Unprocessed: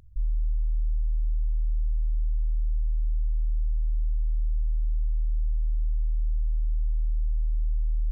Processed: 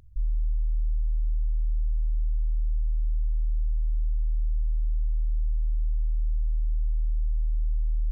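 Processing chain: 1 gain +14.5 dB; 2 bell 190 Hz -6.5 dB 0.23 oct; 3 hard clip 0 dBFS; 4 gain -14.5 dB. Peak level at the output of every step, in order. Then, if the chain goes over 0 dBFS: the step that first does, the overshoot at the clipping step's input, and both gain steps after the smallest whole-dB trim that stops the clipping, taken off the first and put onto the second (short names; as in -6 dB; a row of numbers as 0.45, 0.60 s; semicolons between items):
-5.5, -5.5, -5.5, -20.0 dBFS; no overload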